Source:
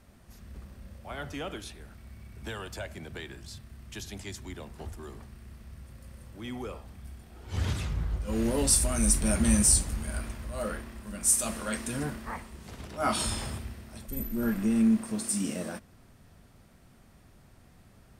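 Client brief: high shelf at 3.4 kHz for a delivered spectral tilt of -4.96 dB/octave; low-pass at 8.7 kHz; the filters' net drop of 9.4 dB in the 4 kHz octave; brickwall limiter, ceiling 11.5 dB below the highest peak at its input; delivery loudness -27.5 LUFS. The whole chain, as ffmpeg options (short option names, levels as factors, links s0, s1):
-af "lowpass=8700,highshelf=f=3400:g=-7.5,equalizer=f=4000:t=o:g=-6.5,volume=2.82,alimiter=limit=0.168:level=0:latency=1"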